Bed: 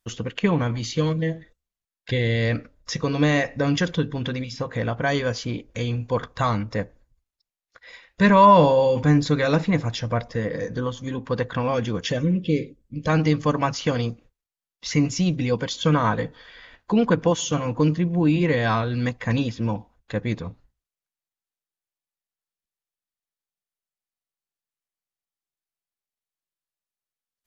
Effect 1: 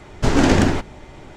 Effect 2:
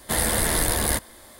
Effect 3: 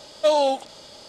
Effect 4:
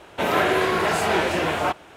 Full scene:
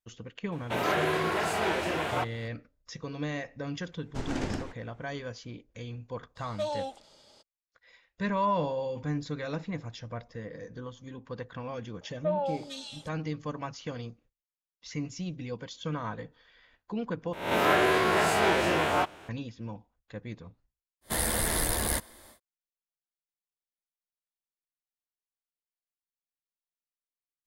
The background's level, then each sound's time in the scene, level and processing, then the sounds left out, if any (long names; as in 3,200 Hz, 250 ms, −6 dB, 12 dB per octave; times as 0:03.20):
bed −14.5 dB
0:00.52: mix in 4 −7.5 dB
0:03.92: mix in 1 −17 dB + expander for the loud parts, over −27 dBFS
0:06.35: mix in 3 −14 dB, fades 0.02 s
0:12.01: mix in 3 −10 dB + three-band delay without the direct sound mids, lows, highs 260/450 ms, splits 320/1,900 Hz
0:17.33: overwrite with 4 −5 dB + peak hold with a rise ahead of every peak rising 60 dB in 0.59 s
0:21.01: mix in 2 −6 dB, fades 0.10 s